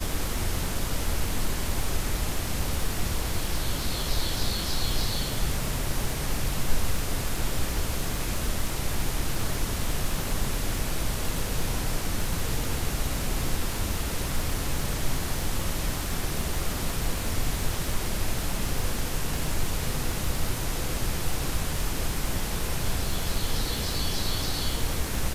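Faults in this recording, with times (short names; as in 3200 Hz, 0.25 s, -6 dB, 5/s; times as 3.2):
crackle 69/s -29 dBFS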